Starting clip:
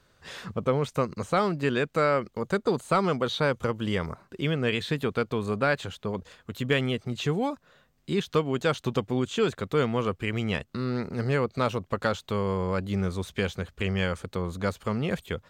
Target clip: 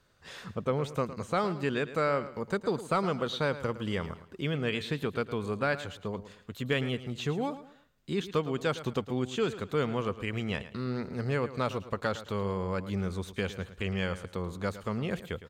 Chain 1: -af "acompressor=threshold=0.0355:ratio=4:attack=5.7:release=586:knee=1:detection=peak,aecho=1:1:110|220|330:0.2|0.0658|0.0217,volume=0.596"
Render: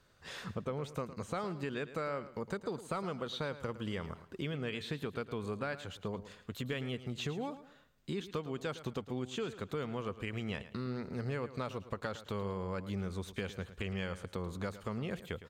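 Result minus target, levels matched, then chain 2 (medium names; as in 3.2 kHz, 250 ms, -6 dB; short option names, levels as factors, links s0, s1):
compression: peak gain reduction +10.5 dB
-af "aecho=1:1:110|220|330:0.2|0.0658|0.0217,volume=0.596"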